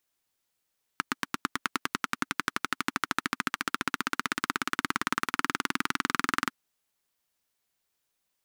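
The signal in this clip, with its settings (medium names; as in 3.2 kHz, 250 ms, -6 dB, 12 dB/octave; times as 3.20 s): single-cylinder engine model, changing speed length 5.50 s, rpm 1000, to 2600, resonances 270/1300 Hz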